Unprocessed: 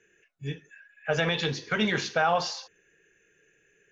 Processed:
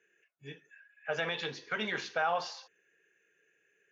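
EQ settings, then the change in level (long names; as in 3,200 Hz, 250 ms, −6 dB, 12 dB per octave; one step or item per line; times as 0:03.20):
high-pass filter 590 Hz 6 dB per octave
high-shelf EQ 4,800 Hz −11 dB
−4.0 dB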